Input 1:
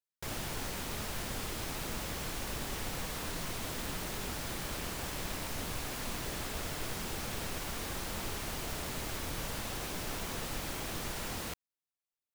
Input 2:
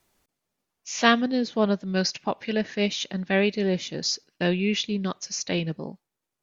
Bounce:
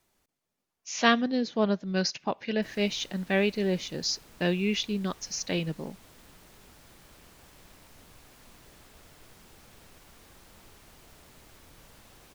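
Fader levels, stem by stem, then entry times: -16.0 dB, -3.0 dB; 2.40 s, 0.00 s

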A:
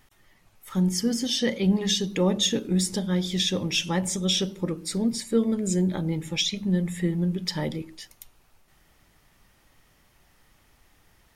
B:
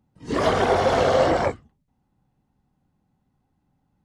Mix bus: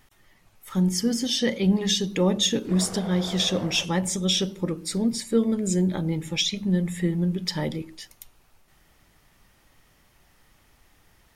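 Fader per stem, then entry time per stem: +1.0 dB, -18.5 dB; 0.00 s, 2.35 s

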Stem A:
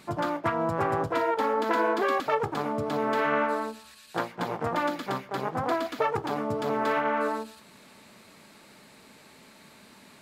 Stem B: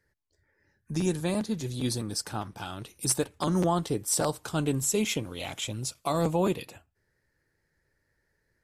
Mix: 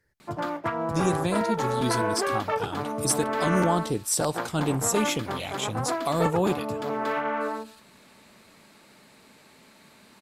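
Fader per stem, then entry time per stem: -1.5 dB, +1.5 dB; 0.20 s, 0.00 s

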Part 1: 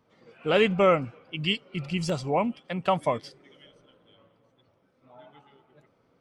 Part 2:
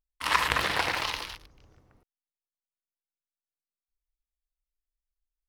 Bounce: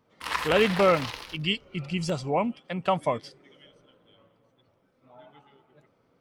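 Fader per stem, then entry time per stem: -0.5 dB, -5.0 dB; 0.00 s, 0.00 s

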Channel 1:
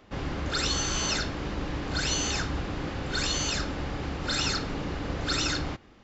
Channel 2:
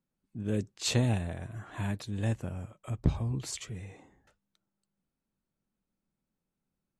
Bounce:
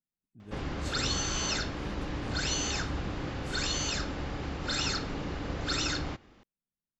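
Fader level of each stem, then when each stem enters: -3.0 dB, -14.5 dB; 0.40 s, 0.00 s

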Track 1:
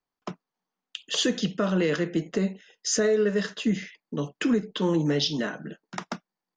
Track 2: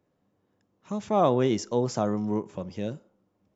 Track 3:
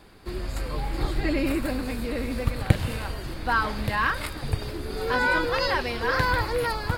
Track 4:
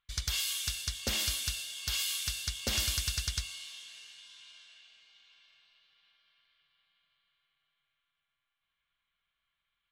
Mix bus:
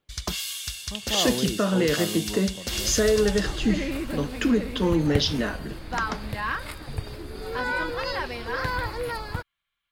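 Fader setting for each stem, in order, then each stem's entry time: +1.5 dB, -7.5 dB, -4.5 dB, +1.5 dB; 0.00 s, 0.00 s, 2.45 s, 0.00 s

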